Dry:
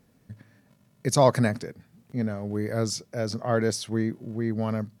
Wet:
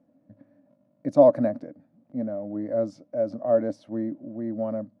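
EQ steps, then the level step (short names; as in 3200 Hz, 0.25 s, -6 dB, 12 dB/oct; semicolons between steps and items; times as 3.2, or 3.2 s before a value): double band-pass 410 Hz, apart 0.99 oct; +8.5 dB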